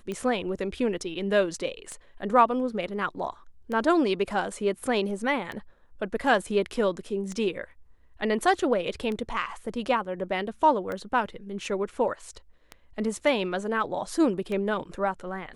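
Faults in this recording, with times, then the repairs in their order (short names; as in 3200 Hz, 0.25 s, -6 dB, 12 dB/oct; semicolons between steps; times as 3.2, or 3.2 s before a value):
tick 33 1/3 rpm -21 dBFS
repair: de-click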